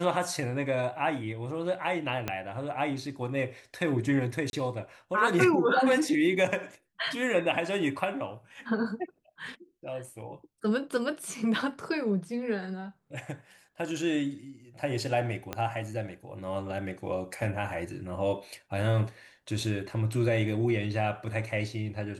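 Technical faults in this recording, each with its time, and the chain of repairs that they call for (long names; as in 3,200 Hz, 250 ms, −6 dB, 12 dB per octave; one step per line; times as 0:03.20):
0:02.28: click −15 dBFS
0:04.50–0:04.53: drop-out 31 ms
0:15.53: click −17 dBFS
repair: click removal
repair the gap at 0:04.50, 31 ms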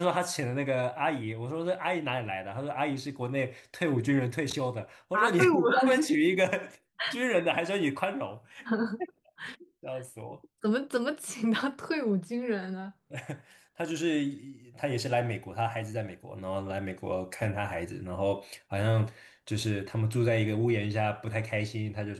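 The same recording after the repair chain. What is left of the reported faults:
0:02.28: click
0:15.53: click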